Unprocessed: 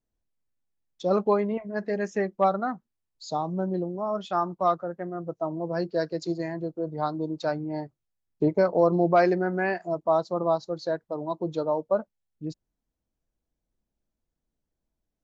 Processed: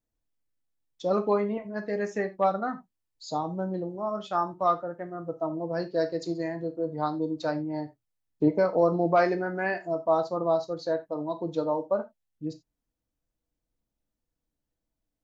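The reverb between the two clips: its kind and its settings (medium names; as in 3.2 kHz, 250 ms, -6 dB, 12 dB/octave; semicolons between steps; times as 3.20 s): gated-style reverb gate 110 ms falling, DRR 6.5 dB; trim -2 dB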